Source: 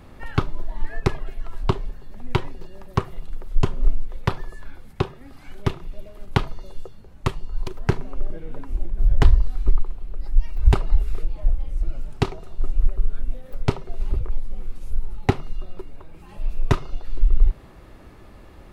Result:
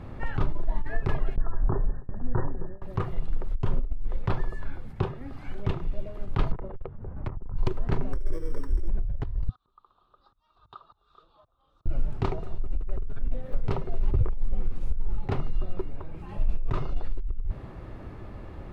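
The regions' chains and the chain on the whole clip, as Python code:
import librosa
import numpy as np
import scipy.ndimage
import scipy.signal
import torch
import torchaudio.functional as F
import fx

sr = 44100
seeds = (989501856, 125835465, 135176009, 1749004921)

y = fx.chain(x, sr, fx.brickwall_lowpass(high_hz=1900.0),
    fx.gate_hold(open_db=-26.0, close_db=-28.0, hold_ms=71.0, range_db=-21, attack_ms=1.4, release_ms=100.0), at=(1.36, 2.82))
y = fx.chain(y, sr, fx.lowpass(hz=1400.0, slope=24),
    fx.tube_stage(drive_db=32.0, bias=0.35),
    fx.band_squash(depth_pct=100), at=(6.52, 7.56))
y = fx.chain(y, sr, fx.sample_sort(block=16),
    fx.fixed_phaser(hz=720.0, stages=6), at=(8.13, 8.88))
y = fx.chain(y, sr, fx.auto_swell(attack_ms=343.0),
    fx.double_bandpass(hz=2100.0, octaves=1.6), at=(9.49, 11.86))
y = fx.lowpass(y, sr, hz=1600.0, slope=6)
y = fx.peak_eq(y, sr, hz=110.0, db=5.5, octaves=0.75)
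y = fx.over_compress(y, sr, threshold_db=-21.0, ratio=-1.0)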